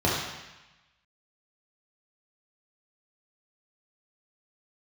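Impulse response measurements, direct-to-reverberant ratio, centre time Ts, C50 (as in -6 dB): -5.5 dB, 71 ms, 0.5 dB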